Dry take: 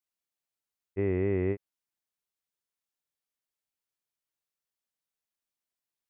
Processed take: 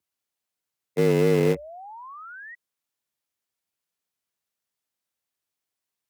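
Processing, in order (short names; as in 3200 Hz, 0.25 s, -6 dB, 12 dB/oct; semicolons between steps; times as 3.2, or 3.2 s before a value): painted sound rise, 1.34–2.55, 370–1900 Hz -46 dBFS; in parallel at -8.5 dB: bit-crush 5-bit; on the sum: vibrato 0.38 Hz 6.9 cents; frequency shift +62 Hz; gain +5 dB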